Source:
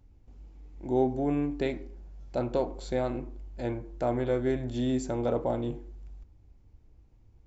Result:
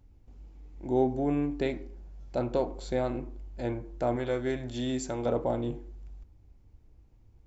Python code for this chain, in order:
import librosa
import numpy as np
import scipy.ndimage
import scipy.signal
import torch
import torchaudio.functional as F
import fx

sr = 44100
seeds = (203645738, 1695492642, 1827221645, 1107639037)

y = fx.tilt_shelf(x, sr, db=-4.0, hz=970.0, at=(4.16, 5.26))